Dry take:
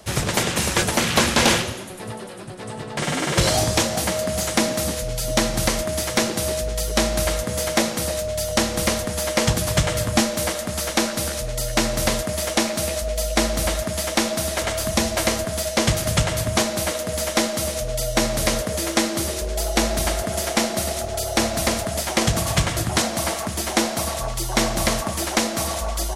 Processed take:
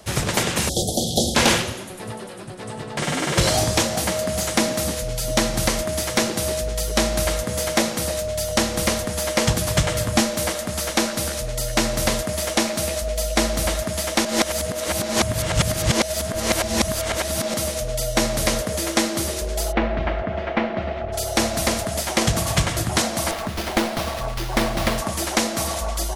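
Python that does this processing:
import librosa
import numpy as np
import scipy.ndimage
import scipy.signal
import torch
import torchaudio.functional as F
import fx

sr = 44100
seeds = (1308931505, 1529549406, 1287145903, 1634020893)

y = fx.cheby1_bandstop(x, sr, low_hz=770.0, high_hz=3300.0, order=5, at=(0.69, 1.35))
y = fx.lowpass(y, sr, hz=2600.0, slope=24, at=(19.71, 21.12), fade=0.02)
y = fx.running_max(y, sr, window=5, at=(23.31, 24.98))
y = fx.edit(y, sr, fx.reverse_span(start_s=14.25, length_s=3.29), tone=tone)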